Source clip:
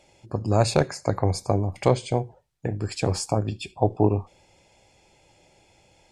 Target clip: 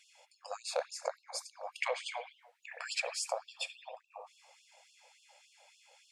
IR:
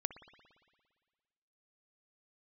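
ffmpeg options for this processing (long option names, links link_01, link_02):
-filter_complex "[0:a]asettb=1/sr,asplit=3[link_01][link_02][link_03];[link_01]atrim=end=1.654[link_04];[link_02]atrim=start=1.65:end=3.02,asetpts=PTS-STARTPTS,afade=type=in:duration=0.004:curve=qsin,afade=type=out:start_time=1.366:duration=0.004:curve=qsin,equalizer=frequency=2100:width=0.91:gain=14[link_05];[link_03]atrim=start=3.016[link_06];[link_04][link_05]acrossfade=duration=0.004:curve1=hsin:curve2=qsin[link_07];[link_07][link_06]acrossfade=duration=0.004:curve1=qsin:curve2=hsin,acrossover=split=330[link_08][link_09];[link_09]acompressor=threshold=-31dB:ratio=6[link_10];[link_08][link_10]amix=inputs=2:normalize=0[link_11];[1:a]atrim=start_sample=2205,afade=type=out:start_time=0.36:duration=0.01,atrim=end_sample=16317[link_12];[link_11][link_12]afir=irnorm=-1:irlink=0,afftfilt=real='re*gte(b*sr/1024,450*pow(2700/450,0.5+0.5*sin(2*PI*3.5*pts/sr)))':imag='im*gte(b*sr/1024,450*pow(2700/450,0.5+0.5*sin(2*PI*3.5*pts/sr)))':win_size=1024:overlap=0.75"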